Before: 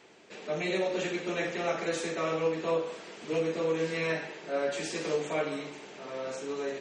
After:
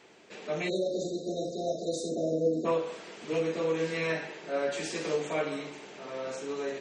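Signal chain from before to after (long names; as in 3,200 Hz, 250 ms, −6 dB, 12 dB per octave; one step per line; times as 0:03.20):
0:00.69–0:02.65: time-frequency box erased 730–3,600 Hz
0:02.09–0:02.72: graphic EQ with 15 bands 250 Hz +11 dB, 1,000 Hz +4 dB, 4,000 Hz −7 dB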